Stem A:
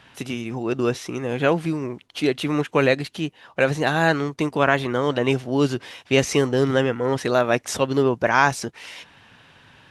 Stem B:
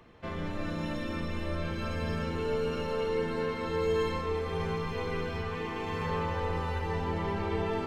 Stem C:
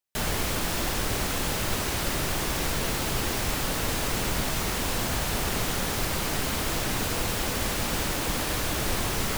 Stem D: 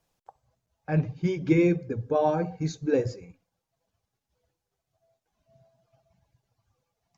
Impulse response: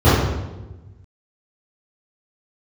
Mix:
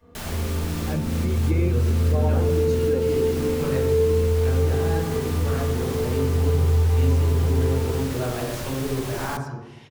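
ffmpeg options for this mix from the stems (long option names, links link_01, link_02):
-filter_complex "[0:a]dynaudnorm=framelen=250:gausssize=5:maxgain=11dB,adelay=850,volume=-20dB,asplit=2[link_01][link_02];[link_02]volume=-23dB[link_03];[1:a]aecho=1:1:4.2:0.95,volume=-12.5dB,asplit=2[link_04][link_05];[link_05]volume=-16dB[link_06];[2:a]volume=-5.5dB,asplit=2[link_07][link_08];[link_08]volume=-24dB[link_09];[3:a]volume=-1.5dB,asplit=2[link_10][link_11];[link_11]apad=whole_len=413272[link_12];[link_07][link_12]sidechaincompress=threshold=-27dB:ratio=3:attack=16:release=245[link_13];[4:a]atrim=start_sample=2205[link_14];[link_03][link_06]amix=inputs=2:normalize=0[link_15];[link_15][link_14]afir=irnorm=-1:irlink=0[link_16];[link_09]aecho=0:1:95:1[link_17];[link_01][link_04][link_13][link_10][link_16][link_17]amix=inputs=6:normalize=0,acompressor=threshold=-24dB:ratio=1.5"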